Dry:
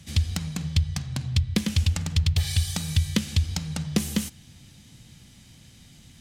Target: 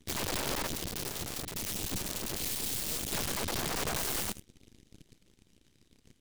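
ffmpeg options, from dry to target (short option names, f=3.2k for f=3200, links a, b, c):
-filter_complex "[0:a]lowshelf=f=290:g=7,aecho=1:1:46|114:0.237|0.316,alimiter=limit=-13.5dB:level=0:latency=1:release=135,asplit=2[a][b];[b]adelay=30,volume=-9dB[c];[a][c]amix=inputs=2:normalize=0,aeval=exprs='(mod(20*val(0)+1,2)-1)/20':c=same,asettb=1/sr,asplit=3[d][e][f];[d]atrim=end=0.674[g];[e]atrim=start=0.67:end=3.13,asetpts=PTS-STARTPTS,afade=t=in:d=0.004:c=qsin,afade=t=out:st=2.456:d=0.004:c=qsin,equalizer=f=1.1k:t=o:w=1.8:g=-12[h];[f]atrim=start=3.126[i];[g][h]acrossfade=d=0.004:c1=hsin:c2=qsin[j];[j][i]acrossfade=d=0.004:c1=qsin:c2=hsin,aeval=exprs='0.0944*(cos(1*acos(clip(val(0)/0.0944,-1,1)))-cos(1*PI/2))+0.0266*(cos(2*acos(clip(val(0)/0.0944,-1,1)))-cos(2*PI/2))+0.0237*(cos(4*acos(clip(val(0)/0.0944,-1,1)))-cos(4*PI/2))+0.00075*(cos(5*acos(clip(val(0)/0.0944,-1,1)))-cos(5*PI/2))+0.015*(cos(7*acos(clip(val(0)/0.0944,-1,1)))-cos(7*PI/2))':c=same,volume=-2.5dB"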